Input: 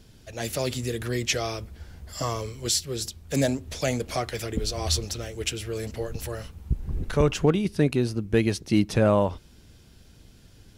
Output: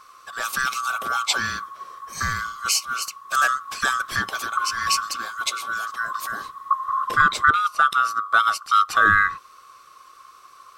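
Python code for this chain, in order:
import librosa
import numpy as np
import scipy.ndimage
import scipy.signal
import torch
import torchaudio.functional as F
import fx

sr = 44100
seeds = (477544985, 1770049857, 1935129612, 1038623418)

y = fx.band_swap(x, sr, width_hz=1000)
y = fx.highpass(y, sr, hz=120.0, slope=6, at=(5.53, 6.42))
y = F.gain(torch.from_numpy(y), 3.5).numpy()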